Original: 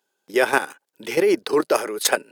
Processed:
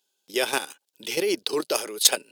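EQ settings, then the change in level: resonant high shelf 2400 Hz +9.5 dB, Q 1.5; -7.0 dB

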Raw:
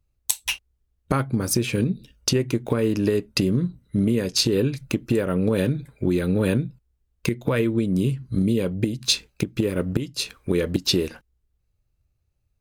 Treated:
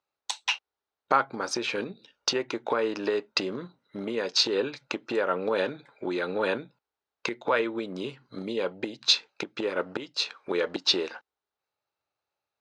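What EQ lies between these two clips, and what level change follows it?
speaker cabinet 470–5900 Hz, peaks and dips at 860 Hz +5 dB, 1400 Hz +4 dB, 3900 Hz +4 dB; bell 920 Hz +6 dB 2 oct; -3.0 dB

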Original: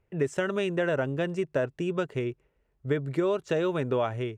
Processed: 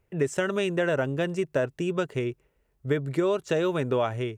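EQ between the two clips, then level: high shelf 6000 Hz +8 dB; +1.5 dB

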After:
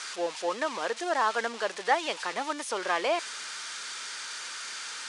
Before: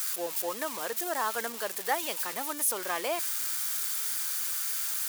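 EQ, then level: HPF 260 Hz 6 dB/oct; elliptic low-pass 10000 Hz, stop band 40 dB; air absorption 120 m; +6.5 dB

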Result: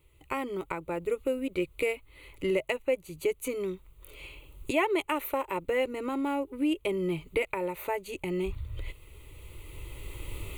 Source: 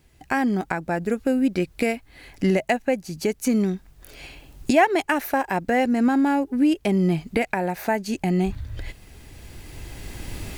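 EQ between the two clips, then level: fixed phaser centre 1100 Hz, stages 8; -3.0 dB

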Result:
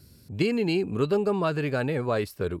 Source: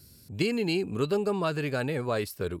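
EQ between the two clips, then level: high shelf 3800 Hz -8.5 dB; +3.0 dB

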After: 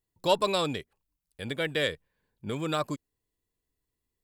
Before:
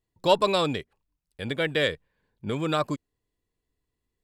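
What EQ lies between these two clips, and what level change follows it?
high shelf 7800 Hz +10 dB; -4.0 dB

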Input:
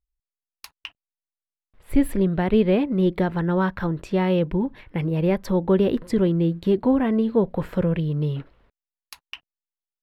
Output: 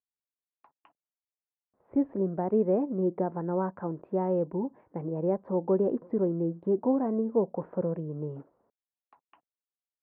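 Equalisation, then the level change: HPF 220 Hz 12 dB/oct; ladder low-pass 1100 Hz, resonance 25%; 0.0 dB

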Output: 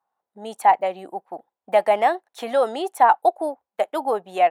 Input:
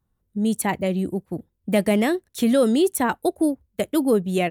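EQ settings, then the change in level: resonant high-pass 790 Hz, resonance Q 4.6; LPF 1700 Hz 6 dB/oct; +2.0 dB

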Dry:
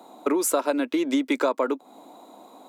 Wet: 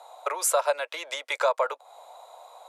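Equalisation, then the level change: steep high-pass 530 Hz 48 dB/oct; LPF 12000 Hz 24 dB/oct; +1.5 dB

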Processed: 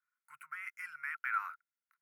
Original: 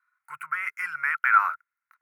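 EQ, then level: passive tone stack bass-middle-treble 5-5-5; -3.5 dB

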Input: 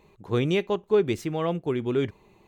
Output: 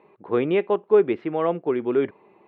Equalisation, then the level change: BPF 320–2800 Hz; air absorption 440 m; +7.0 dB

